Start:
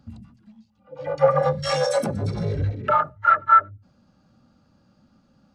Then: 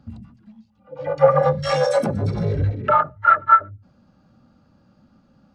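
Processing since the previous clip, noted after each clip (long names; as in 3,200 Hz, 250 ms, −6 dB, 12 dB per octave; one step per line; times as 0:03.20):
high-shelf EQ 4,300 Hz −9 dB
every ending faded ahead of time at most 380 dB per second
level +3.5 dB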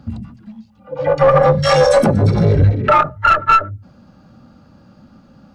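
one-sided soft clipper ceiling −13 dBFS
boost into a limiter +11.5 dB
level −1 dB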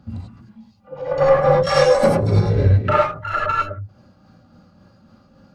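square-wave tremolo 3.6 Hz, depth 65%, duty 65%
reverb whose tail is shaped and stops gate 120 ms rising, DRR −4 dB
level −7.5 dB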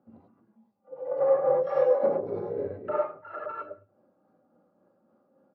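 four-pole ladder band-pass 510 Hz, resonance 30%
repeating echo 107 ms, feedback 26%, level −23 dB
level +1.5 dB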